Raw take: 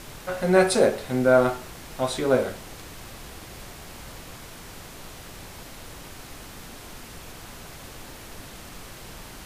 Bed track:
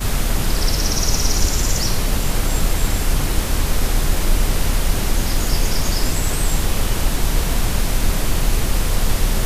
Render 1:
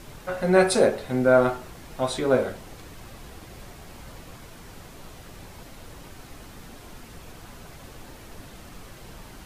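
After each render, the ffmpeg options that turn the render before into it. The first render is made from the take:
ffmpeg -i in.wav -af "afftdn=noise_reduction=6:noise_floor=-43" out.wav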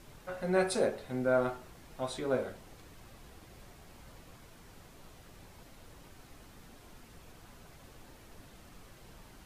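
ffmpeg -i in.wav -af "volume=-10.5dB" out.wav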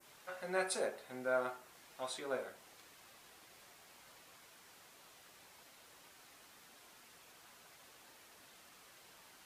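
ffmpeg -i in.wav -af "highpass=frequency=1200:poles=1,adynamicequalizer=threshold=0.00126:dfrequency=3800:dqfactor=0.73:tfrequency=3800:tqfactor=0.73:attack=5:release=100:ratio=0.375:range=3:mode=cutabove:tftype=bell" out.wav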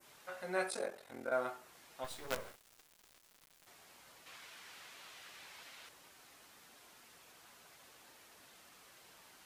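ffmpeg -i in.wav -filter_complex "[0:a]asplit=3[link_01][link_02][link_03];[link_01]afade=type=out:start_time=0.7:duration=0.02[link_04];[link_02]aeval=exprs='val(0)*sin(2*PI*22*n/s)':channel_layout=same,afade=type=in:start_time=0.7:duration=0.02,afade=type=out:start_time=1.3:duration=0.02[link_05];[link_03]afade=type=in:start_time=1.3:duration=0.02[link_06];[link_04][link_05][link_06]amix=inputs=3:normalize=0,asettb=1/sr,asplit=3[link_07][link_08][link_09];[link_07]atrim=end=2.044[link_10];[link_08]atrim=start=2.04:end=3.67,asetpts=PTS-STARTPTS,afade=type=in:duration=0.004:curve=qsin,afade=type=out:start_time=1.626:duration=0.004:curve=qsin,acrusher=bits=6:dc=4:mix=0:aa=0.000001[link_11];[link_09]atrim=start=3.666[link_12];[link_10][link_11]acrossfade=duration=0.004:curve1=hsin:curve2=qsin[link_13];[link_13][link_12]acrossfade=duration=0.004:curve1=qsin:curve2=hsin,asettb=1/sr,asplit=3[link_14][link_15][link_16];[link_14]atrim=end=4.264[link_17];[link_15]atrim=start=4.26:end=5.89,asetpts=PTS-STARTPTS,afade=type=in:duration=0.004:curve=qsin,afade=type=out:start_time=1.626:duration=0.004:curve=qsin,equalizer=frequency=2500:width=0.46:gain=9.5[link_18];[link_16]atrim=start=5.886[link_19];[link_17][link_18]acrossfade=duration=0.004:curve1=hsin:curve2=qsin[link_20];[link_20][link_19]acrossfade=duration=0.004:curve1=qsin:curve2=hsin" out.wav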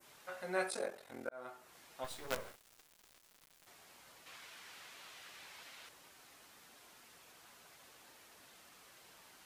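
ffmpeg -i in.wav -filter_complex "[0:a]asplit=2[link_01][link_02];[link_01]atrim=end=1.29,asetpts=PTS-STARTPTS,afade=type=out:start_time=1.286:duration=0.004:curve=hsin[link_03];[link_02]atrim=start=1.29,asetpts=PTS-STARTPTS,afade=type=in:duration=0.47[link_04];[link_03][link_04]concat=n=2:v=0:a=1" out.wav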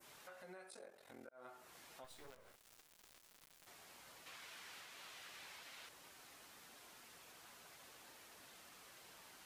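ffmpeg -i in.wav -af "acompressor=threshold=-50dB:ratio=4,alimiter=level_in=20.5dB:limit=-24dB:level=0:latency=1:release=233,volume=-20.5dB" out.wav

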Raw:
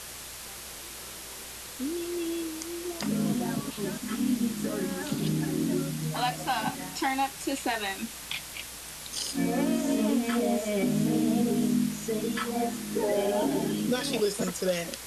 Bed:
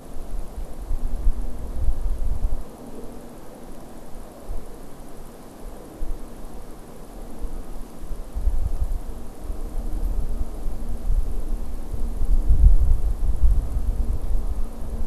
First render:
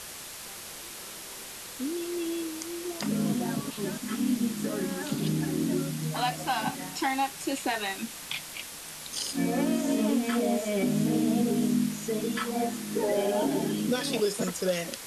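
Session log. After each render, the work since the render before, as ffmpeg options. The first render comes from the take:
ffmpeg -i in.wav -af "bandreject=frequency=60:width_type=h:width=4,bandreject=frequency=120:width_type=h:width=4" out.wav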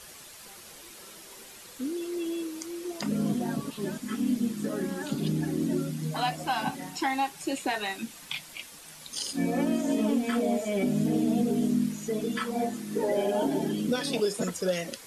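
ffmpeg -i in.wav -af "afftdn=noise_reduction=8:noise_floor=-42" out.wav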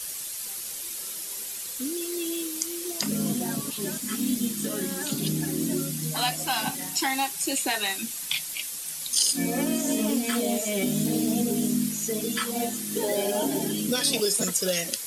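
ffmpeg -i in.wav -filter_complex "[0:a]acrossover=split=640|1100[link_01][link_02][link_03];[link_01]acrusher=samples=9:mix=1:aa=0.000001:lfo=1:lforange=9:lforate=0.49[link_04];[link_03]crystalizer=i=4:c=0[link_05];[link_04][link_02][link_05]amix=inputs=3:normalize=0" out.wav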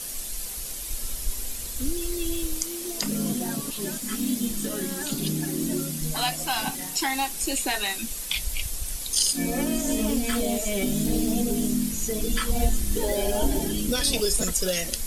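ffmpeg -i in.wav -i bed.wav -filter_complex "[1:a]volume=-10dB[link_01];[0:a][link_01]amix=inputs=2:normalize=0" out.wav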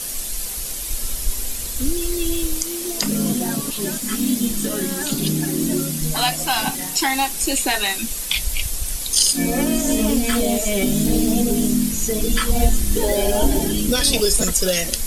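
ffmpeg -i in.wav -af "volume=6.5dB,alimiter=limit=-2dB:level=0:latency=1" out.wav

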